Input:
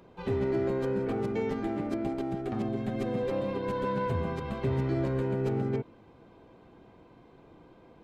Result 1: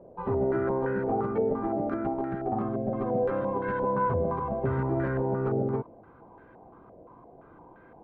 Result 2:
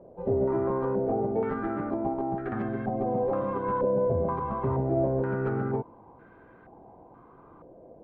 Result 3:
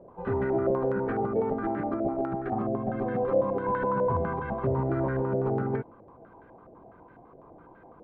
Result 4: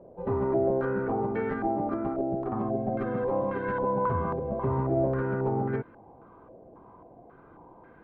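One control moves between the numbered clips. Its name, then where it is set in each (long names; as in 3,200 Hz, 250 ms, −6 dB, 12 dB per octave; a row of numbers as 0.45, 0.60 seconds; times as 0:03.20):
low-pass on a step sequencer, speed: 5.8, 2.1, 12, 3.7 Hertz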